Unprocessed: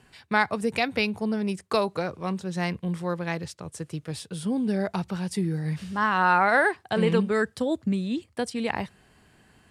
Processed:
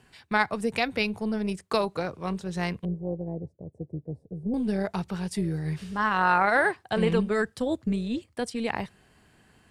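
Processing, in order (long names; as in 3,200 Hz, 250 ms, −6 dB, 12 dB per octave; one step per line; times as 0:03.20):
0:02.85–0:04.54: inverse Chebyshev low-pass filter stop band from 1,200 Hz, stop band 40 dB
amplitude modulation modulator 230 Hz, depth 20%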